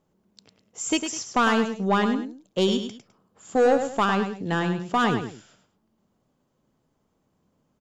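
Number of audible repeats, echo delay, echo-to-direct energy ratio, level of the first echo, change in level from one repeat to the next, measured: 2, 103 ms, -7.5 dB, -8.0 dB, -10.5 dB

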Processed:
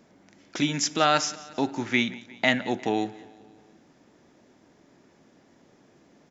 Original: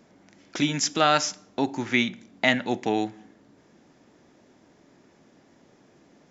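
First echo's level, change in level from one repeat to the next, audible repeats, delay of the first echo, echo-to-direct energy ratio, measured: -20.0 dB, -5.0 dB, 3, 178 ms, -18.5 dB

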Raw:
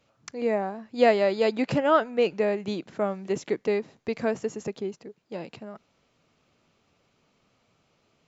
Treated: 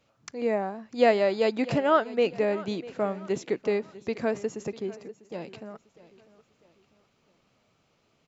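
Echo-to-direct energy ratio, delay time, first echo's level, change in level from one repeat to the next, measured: -17.5 dB, 647 ms, -18.5 dB, -7.5 dB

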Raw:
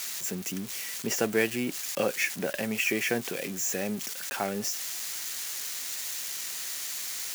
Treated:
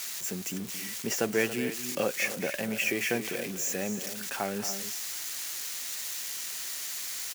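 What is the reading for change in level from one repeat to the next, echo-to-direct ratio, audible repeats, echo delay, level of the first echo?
no regular repeats, -9.5 dB, 2, 225 ms, -12.5 dB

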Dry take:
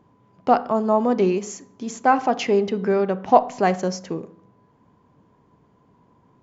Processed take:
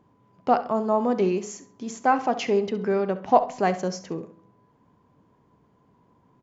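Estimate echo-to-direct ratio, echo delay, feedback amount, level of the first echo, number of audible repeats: -15.0 dB, 67 ms, 23%, -15.0 dB, 2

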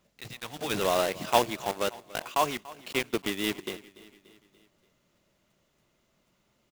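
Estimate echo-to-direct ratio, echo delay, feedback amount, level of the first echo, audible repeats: -18.0 dB, 289 ms, 54%, -19.5 dB, 3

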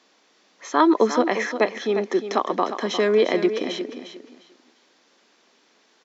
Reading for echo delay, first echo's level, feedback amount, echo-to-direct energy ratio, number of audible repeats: 353 ms, -10.0 dB, 22%, -10.0 dB, 2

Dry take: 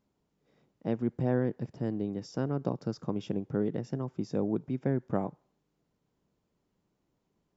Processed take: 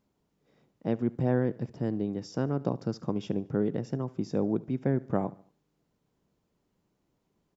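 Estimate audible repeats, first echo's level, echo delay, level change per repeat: 3, -21.5 dB, 73 ms, -6.5 dB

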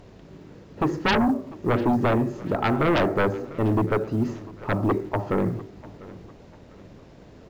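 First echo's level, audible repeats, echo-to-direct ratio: -20.0 dB, 2, -19.5 dB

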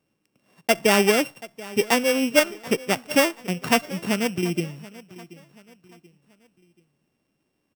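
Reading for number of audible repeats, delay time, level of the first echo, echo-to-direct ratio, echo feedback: 2, 732 ms, -19.5 dB, -19.0 dB, 40%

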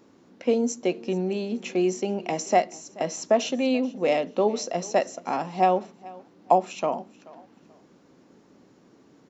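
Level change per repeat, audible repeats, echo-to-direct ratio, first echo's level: -11.5 dB, 2, -21.0 dB, -21.5 dB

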